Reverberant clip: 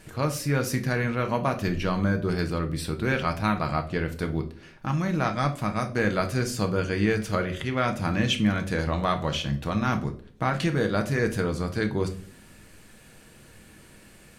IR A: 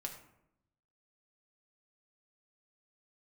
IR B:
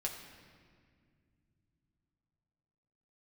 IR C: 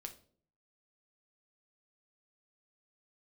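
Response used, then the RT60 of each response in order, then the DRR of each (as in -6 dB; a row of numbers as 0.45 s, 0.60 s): C; 0.80 s, 2.1 s, 0.50 s; 1.5 dB, -1.0 dB, 5.0 dB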